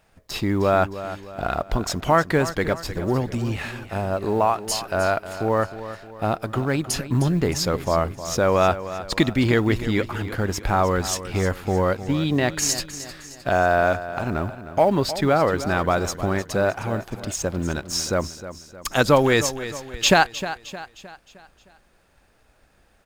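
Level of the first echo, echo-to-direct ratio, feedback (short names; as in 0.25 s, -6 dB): -13.0 dB, -12.0 dB, 46%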